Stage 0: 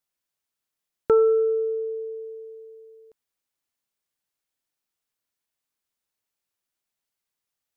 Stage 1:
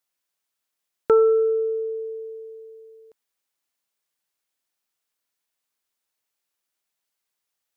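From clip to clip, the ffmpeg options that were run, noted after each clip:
-af "lowshelf=f=240:g=-9,volume=1.5"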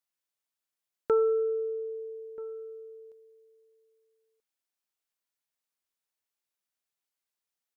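-filter_complex "[0:a]asplit=2[s0][s1];[s1]adelay=1283,volume=0.112,highshelf=f=4000:g=-28.9[s2];[s0][s2]amix=inputs=2:normalize=0,volume=0.398"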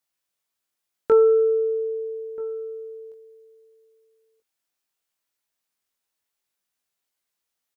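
-filter_complex "[0:a]asplit=2[s0][s1];[s1]adelay=20,volume=0.562[s2];[s0][s2]amix=inputs=2:normalize=0,volume=1.88"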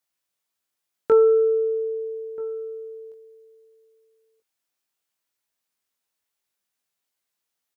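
-af "highpass=47"

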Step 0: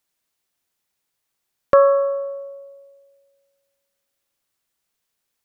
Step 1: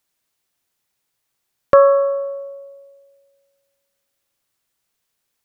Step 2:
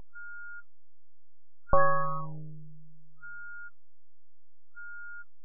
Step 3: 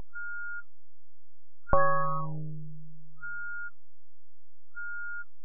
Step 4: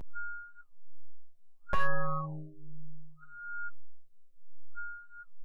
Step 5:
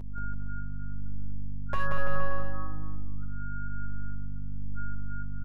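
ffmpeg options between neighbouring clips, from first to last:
-af "equalizer=f=120:t=o:w=0.31:g=4,volume=1.33"
-af "aeval=exprs='val(0)+0.0501*sin(2*PI*710*n/s)':c=same,aeval=exprs='abs(val(0))':c=same,afftfilt=real='re*lt(b*sr/1024,540*pow(1800/540,0.5+0.5*sin(2*PI*0.65*pts/sr)))':imag='im*lt(b*sr/1024,540*pow(1800/540,0.5+0.5*sin(2*PI*0.65*pts/sr)))':win_size=1024:overlap=0.75,volume=0.398"
-af "acompressor=threshold=0.0112:ratio=1.5,volume=2.37"
-filter_complex "[0:a]asoftclip=type=hard:threshold=0.178,asplit=2[s0][s1];[s1]adelay=7.9,afreqshift=-1.1[s2];[s0][s2]amix=inputs=2:normalize=1"
-filter_complex "[0:a]asplit=2[s0][s1];[s1]adelay=238,lowpass=f=1300:p=1,volume=0.473,asplit=2[s2][s3];[s3]adelay=238,lowpass=f=1300:p=1,volume=0.23,asplit=2[s4][s5];[s5]adelay=238,lowpass=f=1300:p=1,volume=0.23[s6];[s2][s4][s6]amix=inputs=3:normalize=0[s7];[s0][s7]amix=inputs=2:normalize=0,aeval=exprs='val(0)+0.0126*(sin(2*PI*50*n/s)+sin(2*PI*2*50*n/s)/2+sin(2*PI*3*50*n/s)/3+sin(2*PI*4*50*n/s)/4+sin(2*PI*5*50*n/s)/5)':c=same,asplit=2[s8][s9];[s9]aecho=0:1:180|333|463|573.6|667.6:0.631|0.398|0.251|0.158|0.1[s10];[s8][s10]amix=inputs=2:normalize=0,volume=0.841"

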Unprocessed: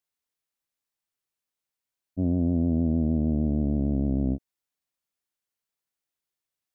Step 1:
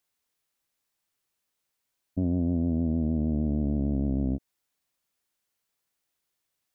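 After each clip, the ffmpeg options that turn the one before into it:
-af "alimiter=level_in=1.12:limit=0.0631:level=0:latency=1:release=108,volume=0.891,volume=2.24"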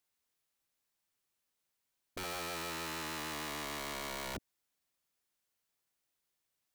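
-af "aeval=exprs='(mod(39.8*val(0)+1,2)-1)/39.8':c=same,volume=0.668"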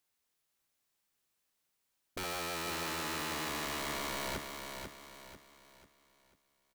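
-af "aecho=1:1:493|986|1479|1972|2465:0.501|0.19|0.0724|0.0275|0.0105,volume=1.26"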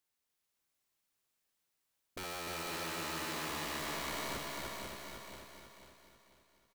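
-af "aecho=1:1:300|570|813|1032|1229:0.631|0.398|0.251|0.158|0.1,volume=0.631"

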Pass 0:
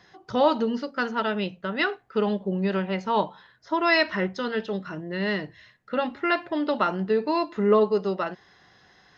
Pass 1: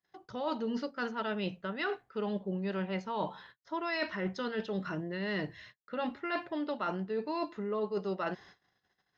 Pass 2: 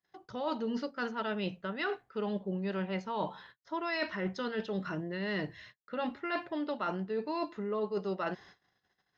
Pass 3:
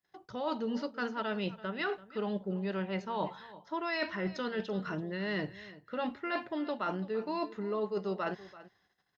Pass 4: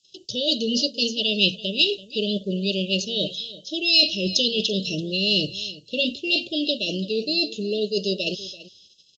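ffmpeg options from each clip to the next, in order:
-af "agate=range=0.0126:threshold=0.00224:ratio=16:detection=peak,areverse,acompressor=threshold=0.0282:ratio=12,areverse"
-af anull
-af "aecho=1:1:336:0.133"
-af "aexciter=amount=4:drive=9.1:freq=2100,asuperstop=centerf=1300:order=20:qfactor=0.62,aresample=16000,aresample=44100,volume=2.82"

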